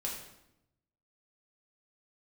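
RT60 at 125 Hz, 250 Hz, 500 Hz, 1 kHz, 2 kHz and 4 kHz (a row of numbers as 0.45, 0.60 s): 1.3, 1.1, 0.90, 0.80, 0.75, 0.70 s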